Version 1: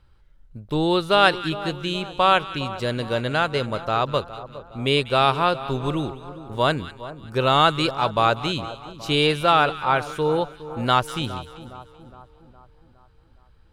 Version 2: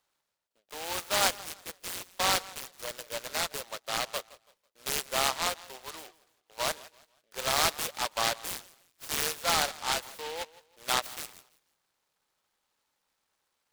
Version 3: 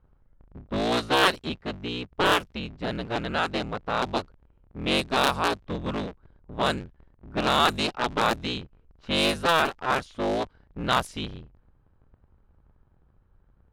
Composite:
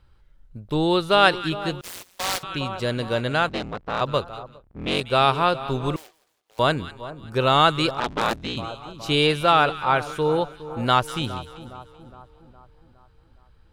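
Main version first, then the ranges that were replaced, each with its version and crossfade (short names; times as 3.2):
1
1.81–2.43 from 2
3.49–4.01 from 3
4.52–5.01 from 3, crossfade 0.24 s
5.96–6.59 from 2
8–8.57 from 3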